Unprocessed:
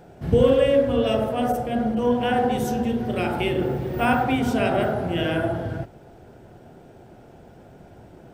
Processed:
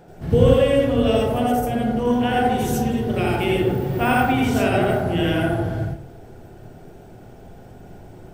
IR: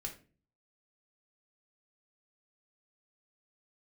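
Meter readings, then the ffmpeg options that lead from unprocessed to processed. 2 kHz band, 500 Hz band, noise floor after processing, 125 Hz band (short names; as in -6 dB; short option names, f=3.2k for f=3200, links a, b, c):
+3.5 dB, +1.5 dB, -43 dBFS, +5.5 dB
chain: -filter_complex "[0:a]asplit=2[a][b];[b]aemphasis=mode=production:type=cd[c];[1:a]atrim=start_sample=2205,lowshelf=f=77:g=8.5,adelay=83[d];[c][d]afir=irnorm=-1:irlink=0,volume=0.5dB[e];[a][e]amix=inputs=2:normalize=0"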